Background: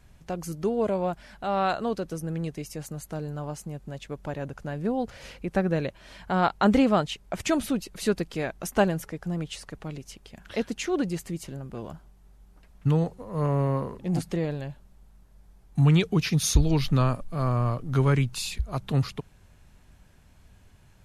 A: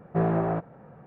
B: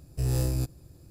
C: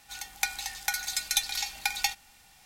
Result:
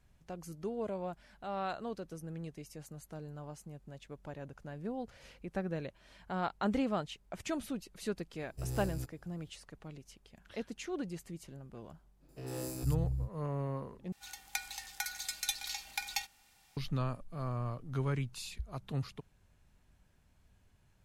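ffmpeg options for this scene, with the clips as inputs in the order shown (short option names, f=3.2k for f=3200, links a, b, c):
-filter_complex "[2:a]asplit=2[a][b];[0:a]volume=-12dB[c];[b]acrossover=split=170|4300[d][e][f];[f]adelay=100[g];[d]adelay=460[h];[h][e][g]amix=inputs=3:normalize=0[i];[c]asplit=2[j][k];[j]atrim=end=14.124[l];[3:a]atrim=end=2.65,asetpts=PTS-STARTPTS,volume=-8.5dB[m];[k]atrim=start=16.766[n];[a]atrim=end=1.1,asetpts=PTS-STARTPTS,volume=-12dB,afade=t=in:d=0.004:c=hsin,afade=t=out:st=1.096:d=0.004:c=hsin,adelay=8400[o];[i]atrim=end=1.1,asetpts=PTS-STARTPTS,volume=-5.5dB,afade=t=in:d=0.05,afade=t=out:st=1.05:d=0.05,adelay=12190[p];[l][m]acrossfade=d=0.004:c1=hsin:c2=hsin[q];[q][n]acrossfade=d=0.004:c1=hsin:c2=hsin[r];[r][o][p]amix=inputs=3:normalize=0"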